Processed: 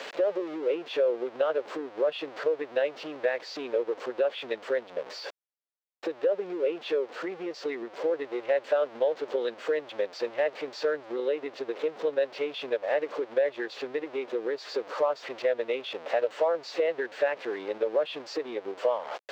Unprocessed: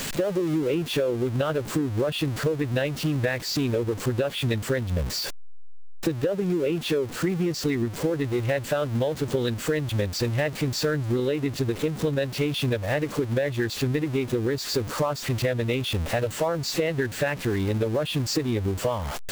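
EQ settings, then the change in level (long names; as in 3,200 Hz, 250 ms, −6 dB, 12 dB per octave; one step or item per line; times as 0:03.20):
four-pole ladder high-pass 420 Hz, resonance 40%
high-frequency loss of the air 210 metres
+5.0 dB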